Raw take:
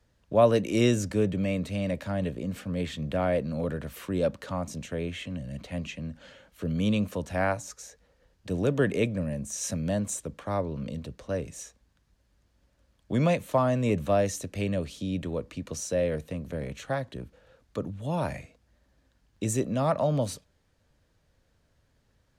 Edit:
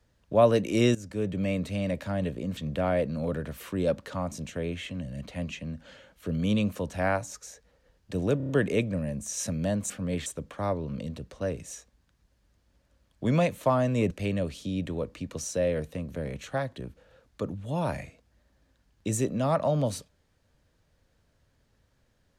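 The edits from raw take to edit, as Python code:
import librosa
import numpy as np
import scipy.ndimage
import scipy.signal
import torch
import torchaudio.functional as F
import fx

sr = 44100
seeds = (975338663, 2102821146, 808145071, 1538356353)

y = fx.edit(x, sr, fx.fade_in_from(start_s=0.95, length_s=0.53, floor_db=-16.0),
    fx.move(start_s=2.57, length_s=0.36, to_s=10.14),
    fx.stutter(start_s=8.73, slice_s=0.03, count=5),
    fx.cut(start_s=13.99, length_s=0.48), tone=tone)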